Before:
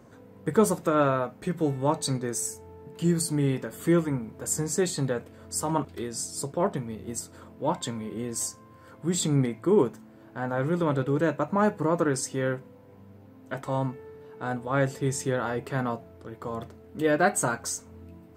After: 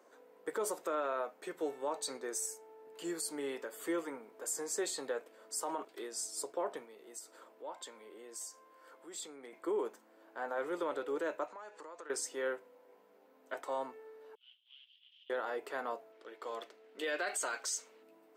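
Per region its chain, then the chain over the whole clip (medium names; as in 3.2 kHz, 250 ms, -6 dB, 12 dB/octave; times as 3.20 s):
6.85–9.53 s: high-pass 220 Hz 6 dB/octave + compression 2:1, threshold -41 dBFS
11.47–12.10 s: low-pass 7.6 kHz 24 dB/octave + tilt EQ +3 dB/octave + compression 16:1, threshold -37 dBFS
14.35–15.30 s: CVSD coder 32 kbps + overload inside the chain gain 30 dB + Butterworth band-pass 3.1 kHz, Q 6.3
16.12–18.03 s: frequency weighting D + tape noise reduction on one side only decoder only
whole clip: high-pass 380 Hz 24 dB/octave; peak limiter -21 dBFS; trim -6 dB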